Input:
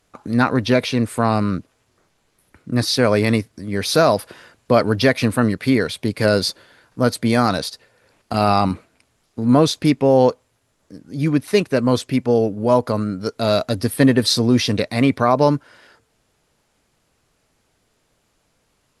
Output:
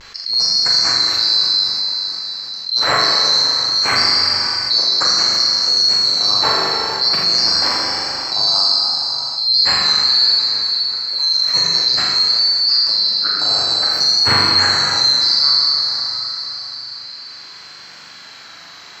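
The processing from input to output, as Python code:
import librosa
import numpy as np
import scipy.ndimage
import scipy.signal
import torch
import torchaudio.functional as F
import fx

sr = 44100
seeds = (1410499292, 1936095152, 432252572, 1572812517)

p1 = fx.band_swap(x, sr, width_hz=4000)
p2 = scipy.signal.sosfilt(scipy.signal.butter(4, 78.0, 'highpass', fs=sr, output='sos'), p1)
p3 = fx.peak_eq(p2, sr, hz=1600.0, db=11.0, octaves=1.5)
p4 = fx.vibrato(p3, sr, rate_hz=0.58, depth_cents=42.0)
p5 = fx.air_absorb(p4, sr, metres=80.0)
p6 = p5 + fx.room_flutter(p5, sr, wall_m=7.1, rt60_s=0.7, dry=0)
p7 = fx.rev_plate(p6, sr, seeds[0], rt60_s=2.6, hf_ratio=1.0, predelay_ms=0, drr_db=-0.5)
p8 = fx.env_flatten(p7, sr, amount_pct=50)
y = p8 * librosa.db_to_amplitude(-6.0)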